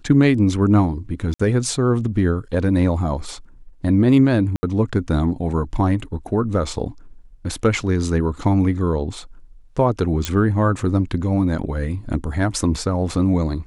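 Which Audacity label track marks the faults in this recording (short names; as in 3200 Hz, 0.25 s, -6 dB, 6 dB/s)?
1.340000	1.400000	gap 55 ms
4.560000	4.630000	gap 70 ms
10.250000	10.250000	pop -6 dBFS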